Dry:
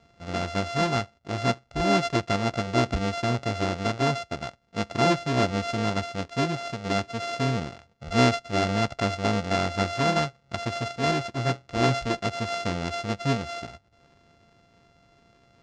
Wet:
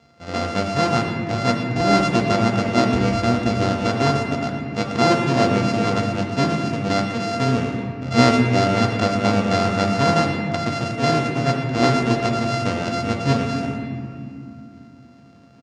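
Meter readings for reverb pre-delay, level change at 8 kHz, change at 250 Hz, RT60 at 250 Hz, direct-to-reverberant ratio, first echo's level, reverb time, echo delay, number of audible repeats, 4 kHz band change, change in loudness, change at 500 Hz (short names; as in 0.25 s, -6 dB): 4 ms, +4.5 dB, +8.5 dB, 4.3 s, 0.5 dB, -13.0 dB, 2.5 s, 0.116 s, 1, +4.5 dB, +6.5 dB, +6.5 dB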